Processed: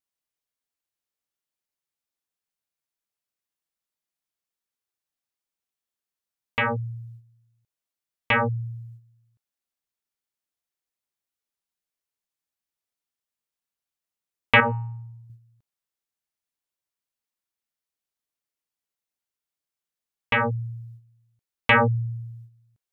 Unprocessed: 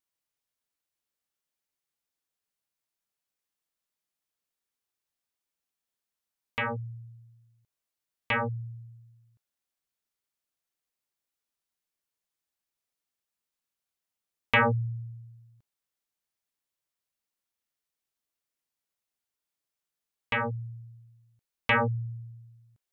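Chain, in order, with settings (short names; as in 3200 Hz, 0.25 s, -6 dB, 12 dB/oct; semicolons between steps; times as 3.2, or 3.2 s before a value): gate -51 dBFS, range -9 dB; 14.6–15.3 resonator 55 Hz, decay 0.59 s, harmonics odd, mix 60%; gain +6.5 dB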